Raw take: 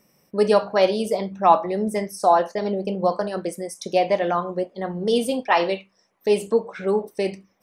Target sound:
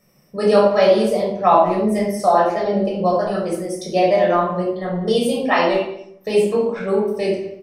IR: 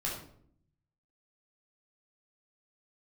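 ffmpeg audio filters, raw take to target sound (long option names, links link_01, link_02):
-filter_complex "[0:a]asplit=2[link_01][link_02];[link_02]adelay=200,highpass=300,lowpass=3400,asoftclip=type=hard:threshold=-12.5dB,volume=-16dB[link_03];[link_01][link_03]amix=inputs=2:normalize=0[link_04];[1:a]atrim=start_sample=2205[link_05];[link_04][link_05]afir=irnorm=-1:irlink=0"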